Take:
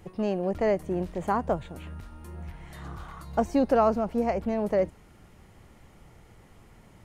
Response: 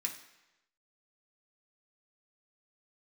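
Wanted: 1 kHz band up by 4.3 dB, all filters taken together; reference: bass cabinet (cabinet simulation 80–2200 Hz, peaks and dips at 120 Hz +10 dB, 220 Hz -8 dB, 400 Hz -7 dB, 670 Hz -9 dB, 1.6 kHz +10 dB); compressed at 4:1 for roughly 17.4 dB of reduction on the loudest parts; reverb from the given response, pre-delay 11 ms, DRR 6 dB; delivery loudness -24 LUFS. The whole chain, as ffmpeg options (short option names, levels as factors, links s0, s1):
-filter_complex "[0:a]equalizer=f=1000:t=o:g=8,acompressor=threshold=0.0178:ratio=4,asplit=2[s0][s1];[1:a]atrim=start_sample=2205,adelay=11[s2];[s1][s2]afir=irnorm=-1:irlink=0,volume=0.447[s3];[s0][s3]amix=inputs=2:normalize=0,highpass=f=80:w=0.5412,highpass=f=80:w=1.3066,equalizer=f=120:t=q:w=4:g=10,equalizer=f=220:t=q:w=4:g=-8,equalizer=f=400:t=q:w=4:g=-7,equalizer=f=670:t=q:w=4:g=-9,equalizer=f=1600:t=q:w=4:g=10,lowpass=f=2200:w=0.5412,lowpass=f=2200:w=1.3066,volume=7.5"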